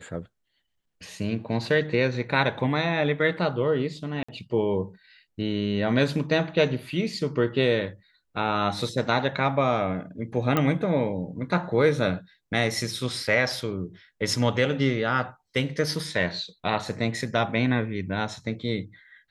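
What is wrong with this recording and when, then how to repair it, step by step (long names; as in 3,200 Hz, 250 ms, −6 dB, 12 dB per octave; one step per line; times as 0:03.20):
0:04.23–0:04.29: drop-out 55 ms
0:10.57: click −10 dBFS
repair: click removal
repair the gap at 0:04.23, 55 ms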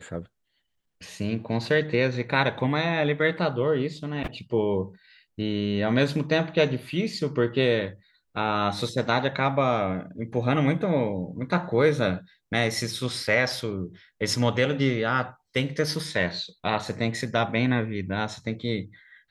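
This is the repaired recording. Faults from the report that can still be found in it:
none of them is left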